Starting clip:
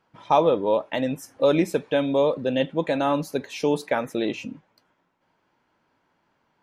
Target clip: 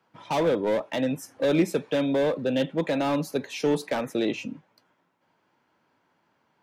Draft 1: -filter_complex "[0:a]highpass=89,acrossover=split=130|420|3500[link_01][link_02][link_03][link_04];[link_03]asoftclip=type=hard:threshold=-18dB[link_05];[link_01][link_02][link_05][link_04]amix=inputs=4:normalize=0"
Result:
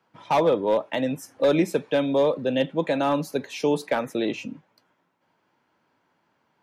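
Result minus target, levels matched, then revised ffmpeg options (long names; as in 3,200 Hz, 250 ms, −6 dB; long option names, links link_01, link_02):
hard clipping: distortion −8 dB
-filter_complex "[0:a]highpass=89,acrossover=split=130|420|3500[link_01][link_02][link_03][link_04];[link_03]asoftclip=type=hard:threshold=-26.5dB[link_05];[link_01][link_02][link_05][link_04]amix=inputs=4:normalize=0"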